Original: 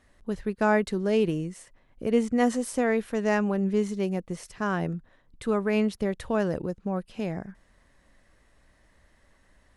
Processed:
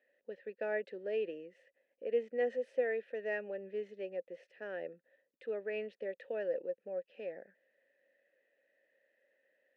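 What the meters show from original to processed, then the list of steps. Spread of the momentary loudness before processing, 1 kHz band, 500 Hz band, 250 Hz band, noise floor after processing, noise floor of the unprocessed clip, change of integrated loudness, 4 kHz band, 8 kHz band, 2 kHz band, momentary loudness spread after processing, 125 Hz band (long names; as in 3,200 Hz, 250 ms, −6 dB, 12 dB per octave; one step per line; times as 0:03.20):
10 LU, −20.0 dB, −8.5 dB, −25.0 dB, −82 dBFS, −63 dBFS, −11.5 dB, below −15 dB, below −35 dB, −10.5 dB, 13 LU, below −30 dB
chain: formant filter e
three-way crossover with the lows and the highs turned down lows −24 dB, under 200 Hz, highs −14 dB, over 4,900 Hz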